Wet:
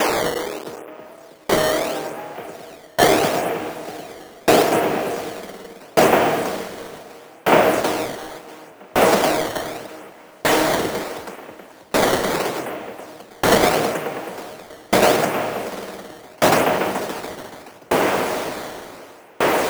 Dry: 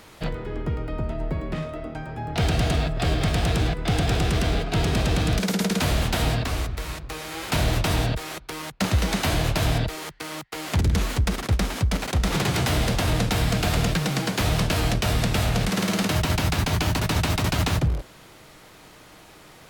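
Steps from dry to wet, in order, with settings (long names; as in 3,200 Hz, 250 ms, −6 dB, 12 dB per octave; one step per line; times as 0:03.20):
linear delta modulator 16 kbit/s, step −23.5 dBFS
high-pass filter 300 Hz 12 dB per octave
parametric band 500 Hz +12 dB 2.5 octaves
sample-and-hold swept by an LFO 10×, swing 160% 0.76 Hz
on a send: feedback delay with all-pass diffusion 1,167 ms, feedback 47%, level −4.5 dB
on the sum: tremolo with a ramp in dB decaying 0.67 Hz, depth 34 dB
level +7 dB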